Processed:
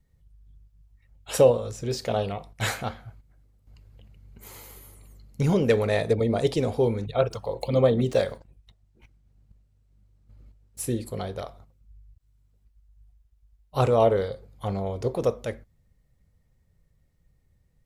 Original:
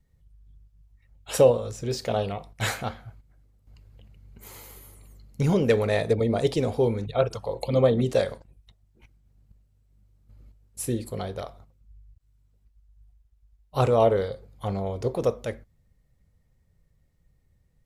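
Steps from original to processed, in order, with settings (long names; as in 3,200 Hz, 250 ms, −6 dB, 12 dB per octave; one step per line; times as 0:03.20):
0:07.23–0:10.80: running median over 3 samples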